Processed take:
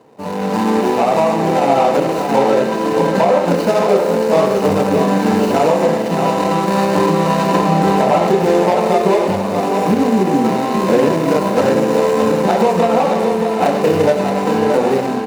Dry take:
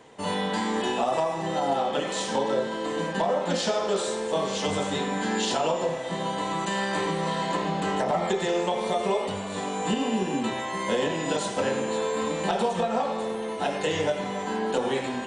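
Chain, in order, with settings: median filter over 25 samples; HPF 93 Hz; notch 3300 Hz, Q 7.9; in parallel at +0.5 dB: limiter -20.5 dBFS, peak gain reduction 6.5 dB; on the sum: AGC gain up to 11 dB; echo 0.624 s -6.5 dB; gain -1 dB

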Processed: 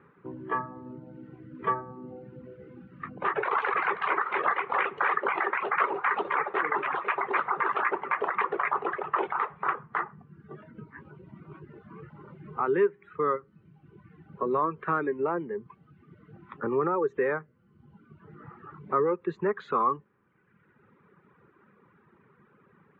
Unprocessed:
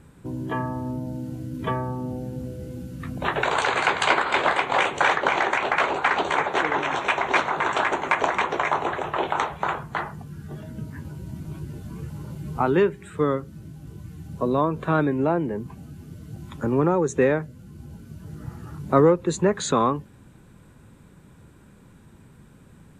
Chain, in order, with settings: reverb removal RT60 1.2 s; limiter -15.5 dBFS, peak gain reduction 9 dB; speaker cabinet 210–2400 Hz, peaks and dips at 270 Hz -7 dB, 410 Hz +6 dB, 650 Hz -6 dB, 1200 Hz +10 dB, 1900 Hz +4 dB; gain -3.5 dB

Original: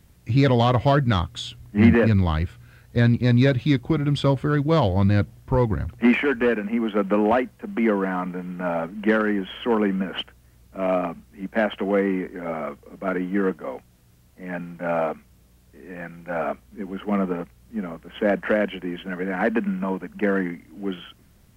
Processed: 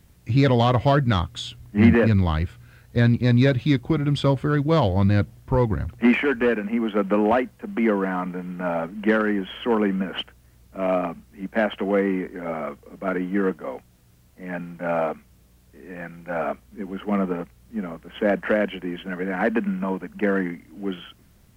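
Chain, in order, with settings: bit-crush 12-bit

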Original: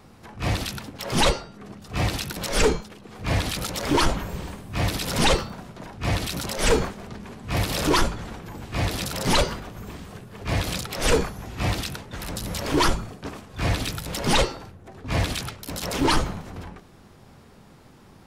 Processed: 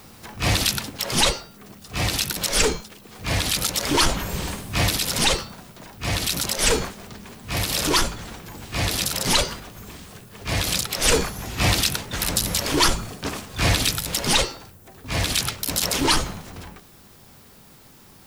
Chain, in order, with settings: high shelf 2400 Hz +10.5 dB; vocal rider within 5 dB 0.5 s; added noise violet -54 dBFS

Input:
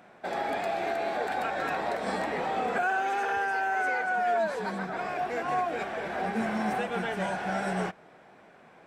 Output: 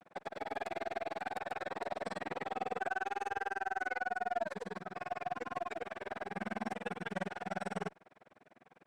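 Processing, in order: grains 40 ms, grains 20/s, pitch spread up and down by 0 st; added harmonics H 8 -34 dB, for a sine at -19 dBFS; gain -4.5 dB

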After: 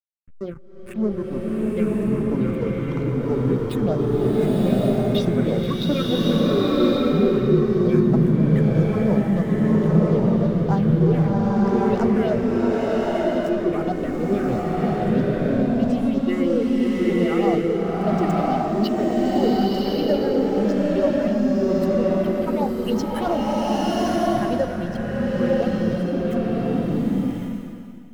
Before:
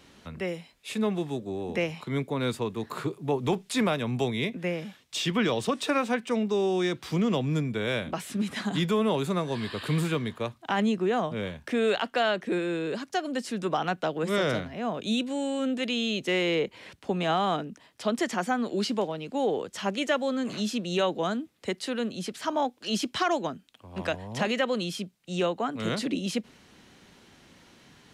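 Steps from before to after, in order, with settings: spectral contrast raised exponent 2; de-hum 46.44 Hz, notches 34; backlash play -28.5 dBFS; phaser stages 4, 3.1 Hz, lowest notch 580–3000 Hz; bloom reverb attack 1.1 s, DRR -6.5 dB; gain +5 dB

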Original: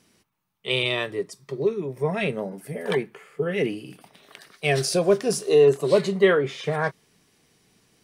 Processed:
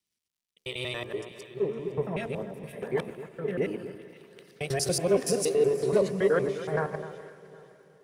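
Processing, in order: local time reversal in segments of 94 ms; limiter -13.5 dBFS, peak gain reduction 6.5 dB; echo with dull and thin repeats by turns 0.255 s, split 1600 Hz, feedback 58%, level -9 dB; dynamic EQ 3300 Hz, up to -7 dB, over -42 dBFS, Q 0.81; on a send: diffused feedback echo 0.469 s, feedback 63%, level -13.5 dB; on the sum: crackle 160/s -48 dBFS; de-hum 70.16 Hz, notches 17; three-band expander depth 70%; gain -4 dB

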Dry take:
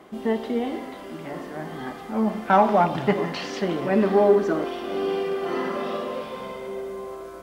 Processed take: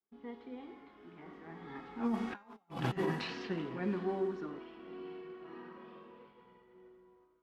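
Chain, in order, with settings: Doppler pass-by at 2.63, 21 m/s, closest 2 m; low-pass opened by the level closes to 2600 Hz, open at -31.5 dBFS; negative-ratio compressor -37 dBFS, ratio -0.5; expander -56 dBFS; bell 600 Hz -13.5 dB 0.35 oct; de-hum 267.5 Hz, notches 27; gain +1 dB

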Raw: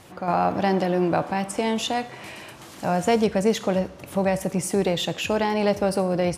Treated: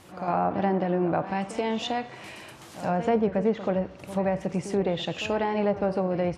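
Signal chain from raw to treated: reverse echo 83 ms -13 dB; treble ducked by the level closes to 1600 Hz, closed at -16.5 dBFS; gain -3.5 dB

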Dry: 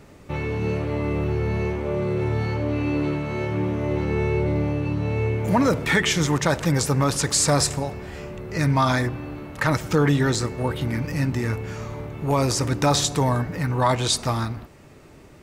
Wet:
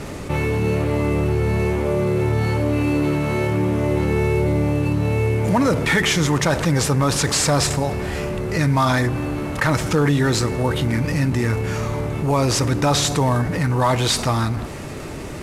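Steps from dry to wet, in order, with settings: CVSD 64 kbps; fast leveller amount 50%; gain +1 dB

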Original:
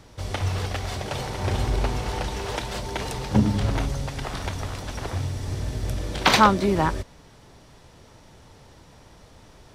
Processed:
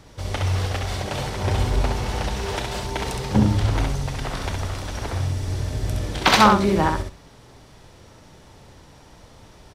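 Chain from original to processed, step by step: feedback echo 66 ms, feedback 18%, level -4 dB; gain +1 dB

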